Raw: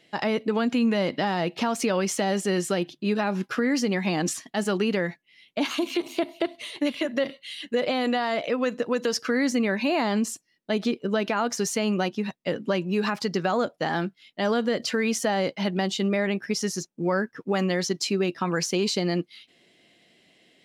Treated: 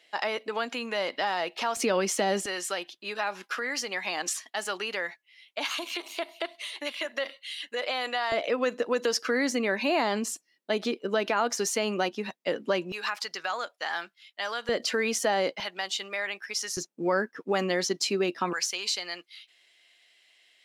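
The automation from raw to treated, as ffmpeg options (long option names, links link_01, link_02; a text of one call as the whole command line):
ffmpeg -i in.wav -af "asetnsamples=nb_out_samples=441:pad=0,asendcmd='1.77 highpass f 270;2.46 highpass f 790;8.32 highpass f 330;12.92 highpass f 1100;14.69 highpass f 340;15.6 highpass f 1000;16.77 highpass f 290;18.53 highpass f 1200',highpass=630" out.wav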